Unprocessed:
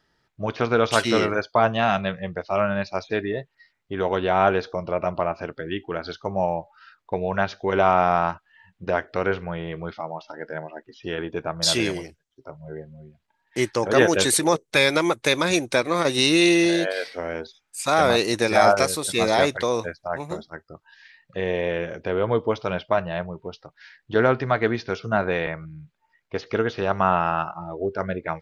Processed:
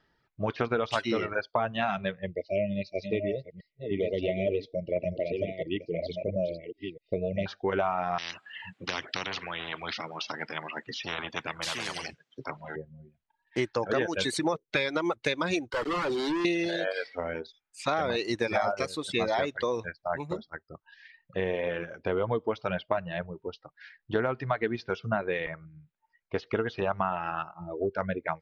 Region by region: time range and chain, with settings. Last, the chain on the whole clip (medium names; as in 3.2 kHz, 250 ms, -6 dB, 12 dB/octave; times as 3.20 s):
2.26–7.46 s: chunks repeated in reverse 674 ms, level -6 dB + brick-wall FIR band-stop 670–1900 Hz + distance through air 66 m
8.18–12.76 s: high-pass 140 Hz 24 dB/octave + band-stop 920 Hz, Q 11 + spectrum-flattening compressor 10:1
15.70–16.45 s: low-pass 2.9 kHz + static phaser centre 680 Hz, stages 6 + companded quantiser 2-bit
whole clip: reverb removal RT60 1.3 s; low-pass 4 kHz 12 dB/octave; compression, threshold -23 dBFS; trim -1 dB